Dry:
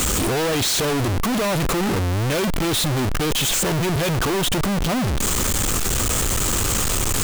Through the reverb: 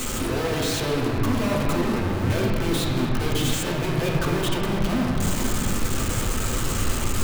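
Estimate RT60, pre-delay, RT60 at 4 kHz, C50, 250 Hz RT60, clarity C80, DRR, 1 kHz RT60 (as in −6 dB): 2.9 s, 4 ms, 1.6 s, 0.5 dB, 5.2 s, 1.5 dB, −4.0 dB, 2.5 s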